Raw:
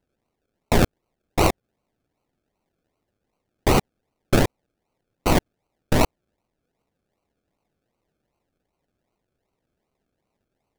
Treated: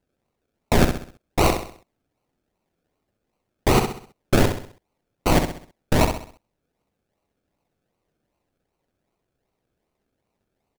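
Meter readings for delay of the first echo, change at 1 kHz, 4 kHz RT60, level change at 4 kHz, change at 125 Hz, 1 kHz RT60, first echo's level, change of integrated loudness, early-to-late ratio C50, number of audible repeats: 65 ms, +1.0 dB, no reverb, +1.0 dB, +1.0 dB, no reverb, -7.0 dB, +0.5 dB, no reverb, 4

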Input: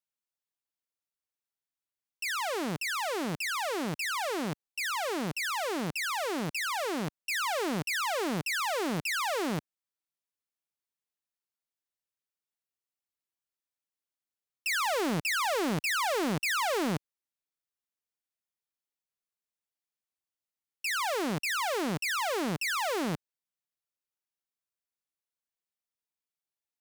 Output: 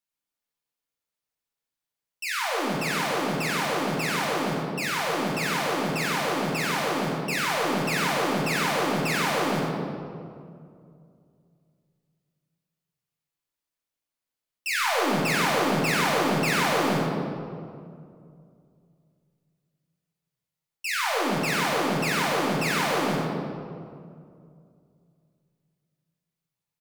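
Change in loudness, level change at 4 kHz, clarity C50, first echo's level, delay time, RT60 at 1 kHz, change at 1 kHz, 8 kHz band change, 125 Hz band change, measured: +5.5 dB, +5.0 dB, -1.0 dB, -6.5 dB, 95 ms, 2.1 s, +6.0 dB, +3.5 dB, +8.0 dB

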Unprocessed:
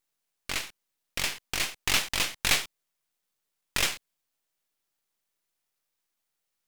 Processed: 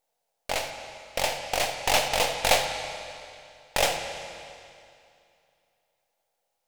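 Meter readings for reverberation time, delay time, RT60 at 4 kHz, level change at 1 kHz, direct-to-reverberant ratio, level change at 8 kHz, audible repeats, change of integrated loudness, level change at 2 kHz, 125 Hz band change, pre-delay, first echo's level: 2.5 s, no echo, 2.4 s, +11.0 dB, 5.0 dB, +0.5 dB, no echo, +1.5 dB, +1.0 dB, +1.5 dB, 17 ms, no echo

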